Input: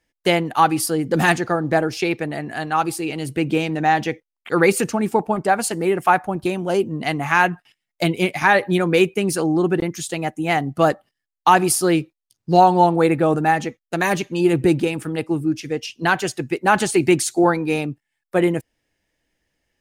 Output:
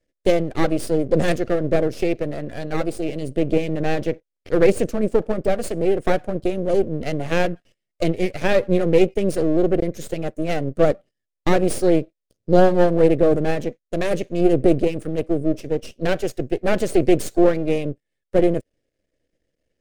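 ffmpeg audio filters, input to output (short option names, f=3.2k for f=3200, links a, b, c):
-af "aresample=22050,aresample=44100,aeval=exprs='max(val(0),0)':c=same,lowshelf=f=700:t=q:w=3:g=7.5,volume=-4.5dB"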